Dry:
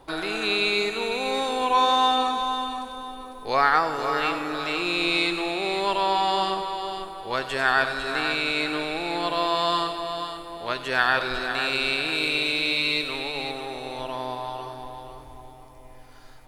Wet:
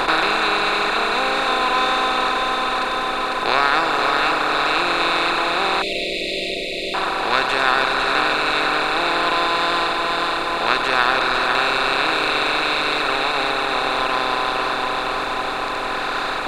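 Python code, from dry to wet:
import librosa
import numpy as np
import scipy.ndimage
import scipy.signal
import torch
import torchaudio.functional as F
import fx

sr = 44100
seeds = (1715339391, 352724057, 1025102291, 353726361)

y = fx.bin_compress(x, sr, power=0.2)
y = fx.dereverb_blind(y, sr, rt60_s=1.1)
y = fx.brickwall_bandstop(y, sr, low_hz=690.0, high_hz=1900.0, at=(5.82, 6.94))
y = y * 10.0 ** (-1.5 / 20.0)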